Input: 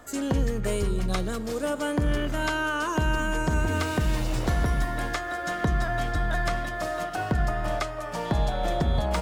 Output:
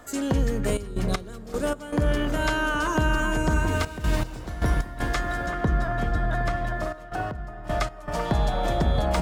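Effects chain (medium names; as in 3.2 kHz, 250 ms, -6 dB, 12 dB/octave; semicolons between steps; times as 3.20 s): 5.46–7.67 s: treble shelf 2.2 kHz -9 dB; bucket-brigade echo 382 ms, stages 4096, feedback 51%, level -8 dB; trance gate "xxxx.x..x.xxxxxx" 78 bpm -12 dB; trim +1.5 dB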